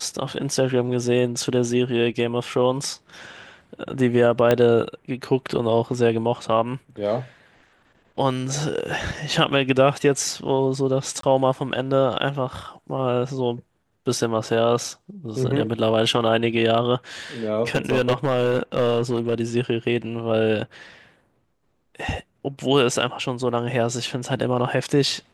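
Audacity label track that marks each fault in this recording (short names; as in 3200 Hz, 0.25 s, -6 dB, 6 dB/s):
4.510000	4.510000	pop -6 dBFS
11.210000	11.230000	gap 23 ms
17.750000	19.350000	clipped -14.5 dBFS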